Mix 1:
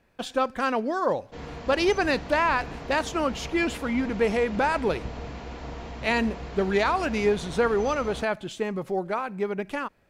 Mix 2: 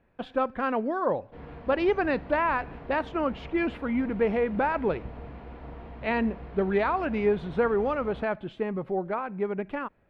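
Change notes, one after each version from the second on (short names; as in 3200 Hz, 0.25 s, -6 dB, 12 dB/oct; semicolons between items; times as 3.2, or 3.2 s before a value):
background -4.0 dB; master: add air absorption 480 m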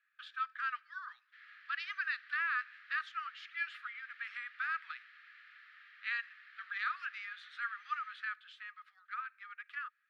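background: add resonant high-pass 1800 Hz, resonance Q 1.8; master: add rippled Chebyshev high-pass 1200 Hz, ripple 6 dB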